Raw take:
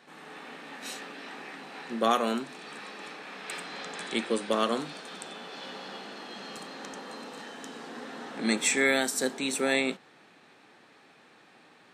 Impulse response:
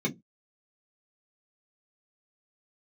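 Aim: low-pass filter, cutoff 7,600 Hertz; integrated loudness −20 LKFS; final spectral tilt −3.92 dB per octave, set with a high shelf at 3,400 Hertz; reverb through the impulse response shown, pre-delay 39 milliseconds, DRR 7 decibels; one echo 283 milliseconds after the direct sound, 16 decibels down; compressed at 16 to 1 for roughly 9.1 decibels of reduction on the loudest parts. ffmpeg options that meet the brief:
-filter_complex "[0:a]lowpass=7600,highshelf=frequency=3400:gain=-4,acompressor=threshold=-29dB:ratio=16,aecho=1:1:283:0.158,asplit=2[link_01][link_02];[1:a]atrim=start_sample=2205,adelay=39[link_03];[link_02][link_03]afir=irnorm=-1:irlink=0,volume=-14.5dB[link_04];[link_01][link_04]amix=inputs=2:normalize=0,volume=15dB"

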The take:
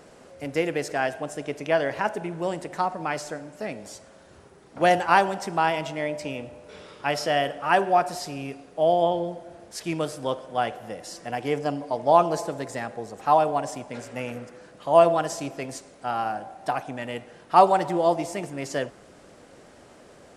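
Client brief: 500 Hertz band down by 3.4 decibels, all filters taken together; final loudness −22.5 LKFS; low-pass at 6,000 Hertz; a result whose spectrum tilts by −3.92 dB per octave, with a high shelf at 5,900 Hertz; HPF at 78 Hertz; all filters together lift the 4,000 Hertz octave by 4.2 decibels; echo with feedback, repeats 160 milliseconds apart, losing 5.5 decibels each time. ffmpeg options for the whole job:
ffmpeg -i in.wav -af "highpass=78,lowpass=6000,equalizer=frequency=500:width_type=o:gain=-5,equalizer=frequency=4000:width_type=o:gain=4,highshelf=frequency=5900:gain=8.5,aecho=1:1:160|320|480|640|800|960|1120:0.531|0.281|0.149|0.079|0.0419|0.0222|0.0118,volume=3dB" out.wav

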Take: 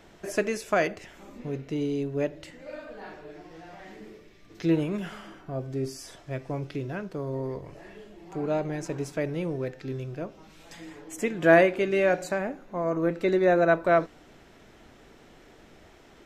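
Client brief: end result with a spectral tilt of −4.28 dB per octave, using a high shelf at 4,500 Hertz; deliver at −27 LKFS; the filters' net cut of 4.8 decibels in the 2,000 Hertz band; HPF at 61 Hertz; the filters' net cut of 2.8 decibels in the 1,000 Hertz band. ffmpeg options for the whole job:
ffmpeg -i in.wav -af "highpass=61,equalizer=frequency=1000:width_type=o:gain=-4,equalizer=frequency=2000:width_type=o:gain=-3.5,highshelf=frequency=4500:gain=-7,volume=2dB" out.wav

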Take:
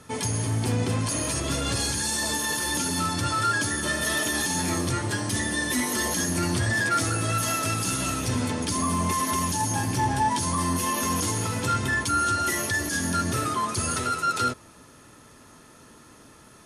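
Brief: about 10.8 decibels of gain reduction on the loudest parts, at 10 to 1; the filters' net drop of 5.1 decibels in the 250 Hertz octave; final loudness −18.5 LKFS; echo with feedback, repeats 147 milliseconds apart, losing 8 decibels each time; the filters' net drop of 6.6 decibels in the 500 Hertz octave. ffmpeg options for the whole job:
ffmpeg -i in.wav -af "equalizer=frequency=250:width_type=o:gain=-4.5,equalizer=frequency=500:width_type=o:gain=-7.5,acompressor=threshold=-33dB:ratio=10,aecho=1:1:147|294|441|588|735:0.398|0.159|0.0637|0.0255|0.0102,volume=16dB" out.wav

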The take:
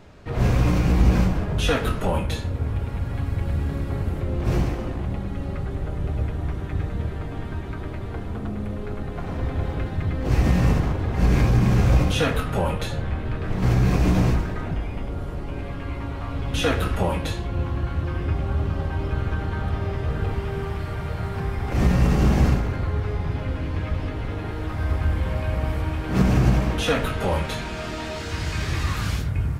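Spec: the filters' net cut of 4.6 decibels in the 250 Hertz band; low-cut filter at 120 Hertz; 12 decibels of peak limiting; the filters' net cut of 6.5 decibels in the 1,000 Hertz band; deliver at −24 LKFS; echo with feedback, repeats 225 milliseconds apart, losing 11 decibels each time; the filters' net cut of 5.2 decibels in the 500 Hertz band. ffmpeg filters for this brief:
ffmpeg -i in.wav -af "highpass=120,equalizer=frequency=250:width_type=o:gain=-5,equalizer=frequency=500:width_type=o:gain=-3,equalizer=frequency=1000:width_type=o:gain=-7.5,alimiter=limit=-23.5dB:level=0:latency=1,aecho=1:1:225|450|675:0.282|0.0789|0.0221,volume=9.5dB" out.wav

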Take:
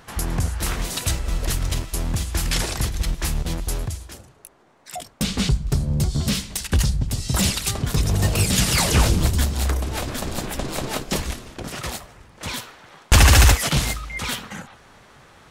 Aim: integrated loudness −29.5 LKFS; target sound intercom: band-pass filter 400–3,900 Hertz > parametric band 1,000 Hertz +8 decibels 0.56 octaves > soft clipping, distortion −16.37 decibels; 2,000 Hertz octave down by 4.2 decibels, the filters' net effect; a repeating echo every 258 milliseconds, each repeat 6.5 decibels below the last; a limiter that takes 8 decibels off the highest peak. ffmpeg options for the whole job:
ffmpeg -i in.wav -af "equalizer=frequency=2000:width_type=o:gain=-6,alimiter=limit=-10dB:level=0:latency=1,highpass=400,lowpass=3900,equalizer=frequency=1000:width_type=o:width=0.56:gain=8,aecho=1:1:258|516|774|1032|1290|1548:0.473|0.222|0.105|0.0491|0.0231|0.0109,asoftclip=threshold=-19.5dB,volume=1.5dB" out.wav

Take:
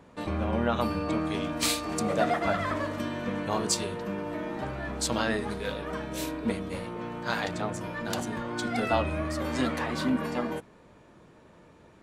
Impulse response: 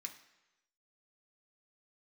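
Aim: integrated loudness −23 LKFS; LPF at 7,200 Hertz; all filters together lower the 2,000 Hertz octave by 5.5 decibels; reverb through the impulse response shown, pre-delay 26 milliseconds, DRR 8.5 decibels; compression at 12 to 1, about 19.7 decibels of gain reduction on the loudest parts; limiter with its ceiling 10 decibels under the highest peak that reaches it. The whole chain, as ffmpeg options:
-filter_complex "[0:a]lowpass=7200,equalizer=frequency=2000:width_type=o:gain=-7.5,acompressor=threshold=-42dB:ratio=12,alimiter=level_in=16dB:limit=-24dB:level=0:latency=1,volume=-16dB,asplit=2[link_01][link_02];[1:a]atrim=start_sample=2205,adelay=26[link_03];[link_02][link_03]afir=irnorm=-1:irlink=0,volume=-4.5dB[link_04];[link_01][link_04]amix=inputs=2:normalize=0,volume=25.5dB"

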